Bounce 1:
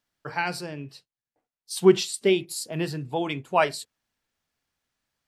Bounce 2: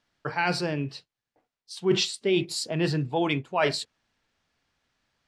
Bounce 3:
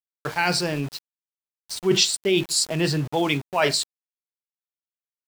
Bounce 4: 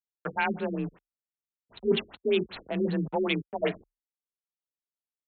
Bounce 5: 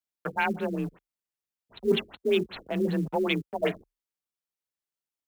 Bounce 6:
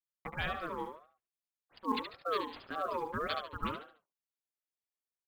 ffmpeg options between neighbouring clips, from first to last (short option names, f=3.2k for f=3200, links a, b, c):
-af "lowpass=5.4k,areverse,acompressor=threshold=-29dB:ratio=6,areverse,volume=7.5dB"
-af "equalizer=f=8.5k:t=o:w=1.7:g=10,aeval=exprs='val(0)*gte(abs(val(0)),0.0158)':c=same,volume=2.5dB"
-af "afreqshift=32,adynamicsmooth=sensitivity=3:basefreq=1.4k,afftfilt=real='re*lt(b*sr/1024,420*pow(4400/420,0.5+0.5*sin(2*PI*5.2*pts/sr)))':imag='im*lt(b*sr/1024,420*pow(4400/420,0.5+0.5*sin(2*PI*5.2*pts/sr)))':win_size=1024:overlap=0.75,volume=-4dB"
-af "acrusher=bits=8:mode=log:mix=0:aa=0.000001,volume=1dB"
-filter_complex "[0:a]asplit=2[a][b];[b]aecho=0:1:72|144|216|288:0.473|0.161|0.0547|0.0186[c];[a][c]amix=inputs=2:normalize=0,aeval=exprs='val(0)*sin(2*PI*810*n/s+810*0.2/1.8*sin(2*PI*1.8*n/s))':c=same,volume=-7dB"